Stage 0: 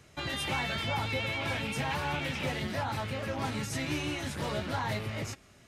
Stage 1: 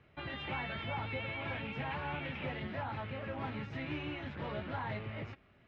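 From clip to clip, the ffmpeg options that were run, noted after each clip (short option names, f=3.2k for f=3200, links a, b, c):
-af "lowpass=f=3k:w=0.5412,lowpass=f=3k:w=1.3066,volume=-6dB"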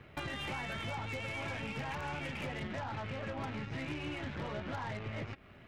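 -af "acompressor=threshold=-49dB:ratio=5,aeval=exprs='0.01*(cos(1*acos(clip(val(0)/0.01,-1,1)))-cos(1*PI/2))+0.00178*(cos(5*acos(clip(val(0)/0.01,-1,1)))-cos(5*PI/2))+0.00141*(cos(7*acos(clip(val(0)/0.01,-1,1)))-cos(7*PI/2))+0.000447*(cos(8*acos(clip(val(0)/0.01,-1,1)))-cos(8*PI/2))':c=same,volume=9.5dB"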